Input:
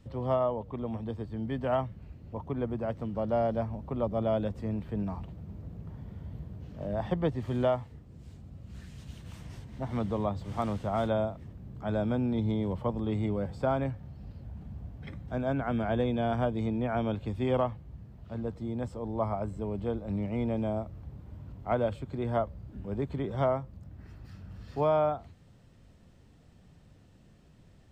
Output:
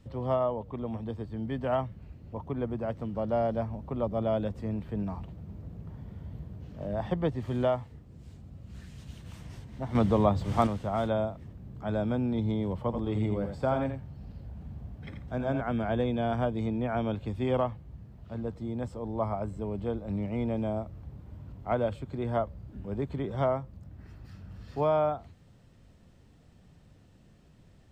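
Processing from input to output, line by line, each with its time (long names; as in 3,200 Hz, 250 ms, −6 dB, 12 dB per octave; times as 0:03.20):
0:09.95–0:10.67: clip gain +7 dB
0:12.83–0:15.61: single-tap delay 85 ms −7.5 dB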